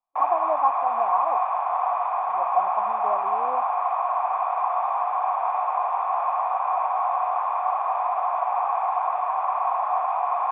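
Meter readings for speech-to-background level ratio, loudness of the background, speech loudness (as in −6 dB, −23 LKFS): −3.5 dB, −24.5 LKFS, −28.0 LKFS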